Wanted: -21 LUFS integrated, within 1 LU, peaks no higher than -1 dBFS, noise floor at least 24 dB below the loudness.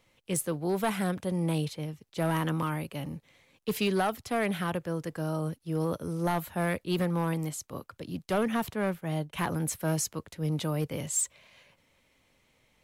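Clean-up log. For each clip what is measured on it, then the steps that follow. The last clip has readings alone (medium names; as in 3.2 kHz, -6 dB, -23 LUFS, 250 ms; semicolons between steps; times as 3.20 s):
clipped samples 0.9%; clipping level -21.5 dBFS; loudness -31.5 LUFS; peak level -21.5 dBFS; loudness target -21.0 LUFS
-> clip repair -21.5 dBFS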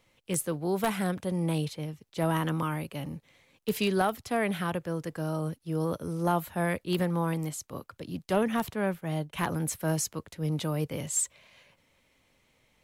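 clipped samples 0.0%; loudness -31.0 LUFS; peak level -12.5 dBFS; loudness target -21.0 LUFS
-> trim +10 dB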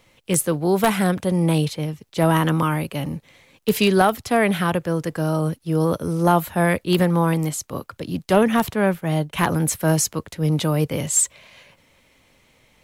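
loudness -21.0 LUFS; peak level -2.5 dBFS; noise floor -59 dBFS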